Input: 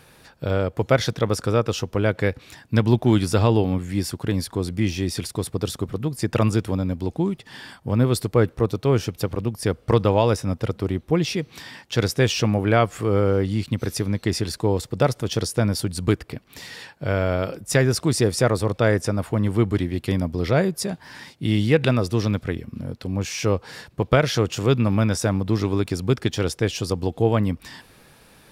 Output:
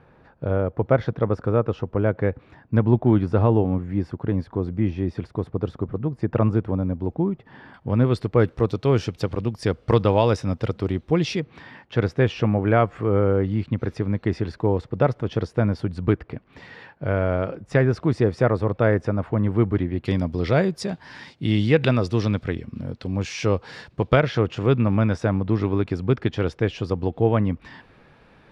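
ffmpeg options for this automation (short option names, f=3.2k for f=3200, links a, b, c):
-af "asetnsamples=n=441:p=0,asendcmd='7.74 lowpass f 2700;8.4 lowpass f 5000;11.4 lowpass f 1900;20.05 lowpass f 4700;24.2 lowpass f 2400',lowpass=1.3k"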